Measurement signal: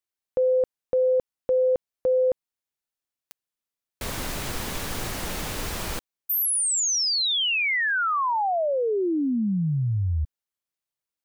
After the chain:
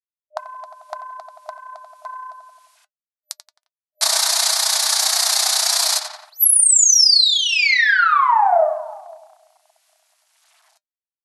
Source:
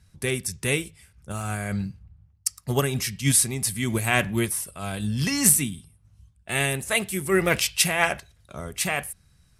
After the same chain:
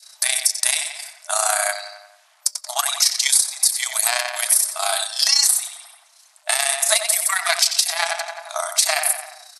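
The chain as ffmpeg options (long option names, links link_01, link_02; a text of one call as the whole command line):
ffmpeg -i in.wav -filter_complex "[0:a]aeval=exprs='0.531*(cos(1*acos(clip(val(0)/0.531,-1,1)))-cos(1*PI/2))+0.188*(cos(2*acos(clip(val(0)/0.531,-1,1)))-cos(2*PI/2))+0.0119*(cos(7*acos(clip(val(0)/0.531,-1,1)))-cos(7*PI/2))':channel_layout=same,tremolo=f=30:d=0.75,highshelf=frequency=3500:width_type=q:width=3:gain=6.5,asplit=2[link_01][link_02];[link_02]adelay=88,lowpass=frequency=3400:poles=1,volume=-7.5dB,asplit=2[link_03][link_04];[link_04]adelay=88,lowpass=frequency=3400:poles=1,volume=0.49,asplit=2[link_05][link_06];[link_06]adelay=88,lowpass=frequency=3400:poles=1,volume=0.49,asplit=2[link_07][link_08];[link_08]adelay=88,lowpass=frequency=3400:poles=1,volume=0.49,asplit=2[link_09][link_10];[link_10]adelay=88,lowpass=frequency=3400:poles=1,volume=0.49,asplit=2[link_11][link_12];[link_12]adelay=88,lowpass=frequency=3400:poles=1,volume=0.49[link_13];[link_03][link_05][link_07][link_09][link_11][link_13]amix=inputs=6:normalize=0[link_14];[link_01][link_14]amix=inputs=2:normalize=0,acrusher=bits=11:mix=0:aa=0.000001,adynamicequalizer=threshold=0.00891:dfrequency=1100:dqfactor=0.75:tfrequency=1100:tqfactor=0.75:attack=5:release=100:ratio=0.375:range=1.5:mode=cutabove:tftype=bell,flanger=delay=3.3:depth=1.3:regen=-67:speed=0.23:shape=sinusoidal,acompressor=threshold=-32dB:ratio=20:attack=5.4:release=716:knee=6:detection=peak,afftfilt=real='re*between(b*sr/4096,610,12000)':imag='im*between(b*sr/4096,610,12000)':win_size=4096:overlap=0.75,alimiter=level_in=25.5dB:limit=-1dB:release=50:level=0:latency=1,volume=-1dB" out.wav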